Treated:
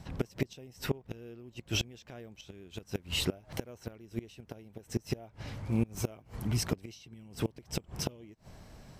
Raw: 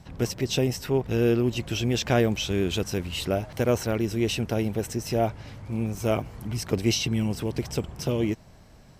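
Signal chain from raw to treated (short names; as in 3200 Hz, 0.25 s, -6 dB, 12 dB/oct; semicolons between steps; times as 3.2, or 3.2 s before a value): flipped gate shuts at -18 dBFS, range -26 dB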